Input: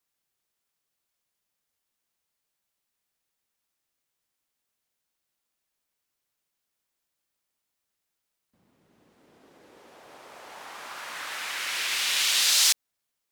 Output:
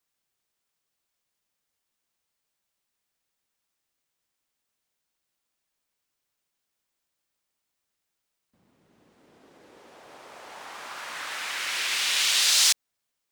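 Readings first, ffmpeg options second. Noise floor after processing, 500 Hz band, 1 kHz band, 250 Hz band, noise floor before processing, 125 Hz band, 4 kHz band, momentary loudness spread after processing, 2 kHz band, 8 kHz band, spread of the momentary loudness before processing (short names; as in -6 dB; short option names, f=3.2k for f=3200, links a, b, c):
-82 dBFS, +1.0 dB, +1.0 dB, +1.0 dB, -83 dBFS, +1.0 dB, +1.0 dB, 21 LU, +1.0 dB, +0.5 dB, 21 LU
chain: -af "equalizer=f=12k:t=o:w=0.21:g=-8,volume=1dB"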